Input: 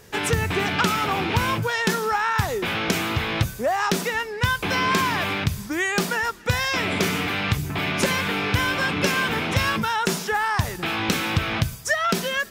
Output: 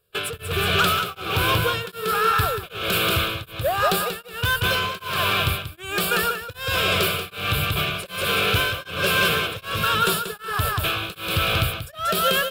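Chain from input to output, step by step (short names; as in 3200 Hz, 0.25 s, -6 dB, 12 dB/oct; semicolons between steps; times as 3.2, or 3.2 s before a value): high shelf 4300 Hz +7.5 dB; gate -25 dBFS, range -26 dB; fixed phaser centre 1300 Hz, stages 8; soft clip -20 dBFS, distortion -14 dB; feedback echo 0.185 s, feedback 34%, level -3.5 dB; beating tremolo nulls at 1.3 Hz; gain +6 dB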